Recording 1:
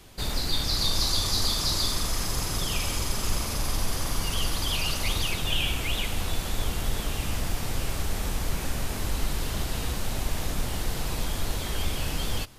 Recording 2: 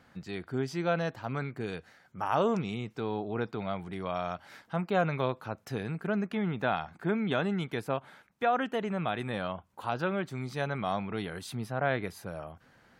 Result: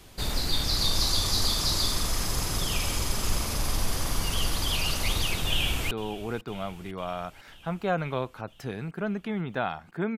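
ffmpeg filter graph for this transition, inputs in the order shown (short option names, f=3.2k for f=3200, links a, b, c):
-filter_complex "[0:a]apad=whole_dur=10.17,atrim=end=10.17,atrim=end=5.912[a];[1:a]atrim=start=2.978:end=7.24[b];[a][b]acrossfade=d=0.004:c1=hsin:c2=hsin,asplit=2[c][d];[d]afade=t=in:st=5.47:d=0.01,afade=t=out:st=5.91:d=0.01,aecho=0:1:500|1000|1500|2000|2500|3000|3500|4000:0.133352|0.0933465|0.0653426|0.0457398|0.0320178|0.0224125|0.0156887|0.0109821[e];[c][e]amix=inputs=2:normalize=0"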